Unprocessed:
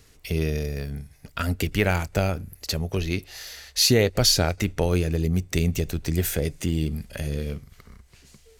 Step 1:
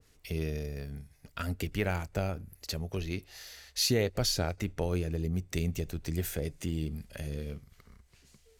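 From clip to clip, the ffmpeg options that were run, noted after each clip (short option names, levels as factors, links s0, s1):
-af "adynamicequalizer=threshold=0.01:dfrequency=1700:dqfactor=0.7:tfrequency=1700:tqfactor=0.7:attack=5:release=100:ratio=0.375:range=2:mode=cutabove:tftype=highshelf,volume=0.376"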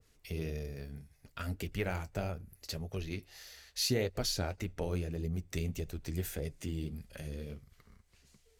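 -af "flanger=delay=1.5:depth=8.8:regen=-52:speed=1.7:shape=sinusoidal"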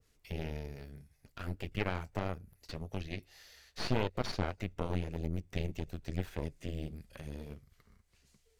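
-filter_complex "[0:a]aeval=exprs='0.112*(cos(1*acos(clip(val(0)/0.112,-1,1)))-cos(1*PI/2))+0.0501*(cos(4*acos(clip(val(0)/0.112,-1,1)))-cos(4*PI/2))':c=same,acrossover=split=4500[s0][s1];[s1]acompressor=threshold=0.00141:ratio=4:attack=1:release=60[s2];[s0][s2]amix=inputs=2:normalize=0,volume=0.668"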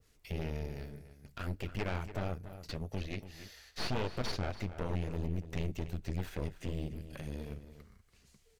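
-filter_complex "[0:a]asoftclip=type=tanh:threshold=0.0398,asplit=2[s0][s1];[s1]adelay=285.7,volume=0.251,highshelf=f=4000:g=-6.43[s2];[s0][s2]amix=inputs=2:normalize=0,volume=1.41"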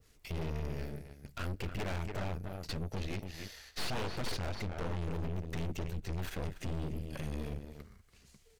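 -af "aeval=exprs='(tanh(126*val(0)+0.75)-tanh(0.75))/126':c=same,volume=2.37"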